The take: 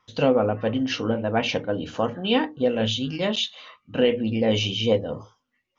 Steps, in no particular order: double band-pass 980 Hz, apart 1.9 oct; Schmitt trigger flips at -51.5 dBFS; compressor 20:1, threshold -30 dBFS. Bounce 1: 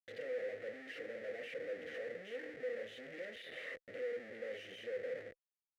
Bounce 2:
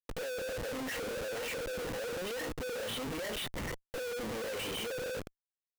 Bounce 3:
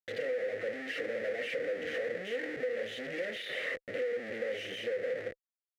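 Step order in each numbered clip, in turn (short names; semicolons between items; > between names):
compressor > Schmitt trigger > double band-pass; double band-pass > compressor > Schmitt trigger; Schmitt trigger > double band-pass > compressor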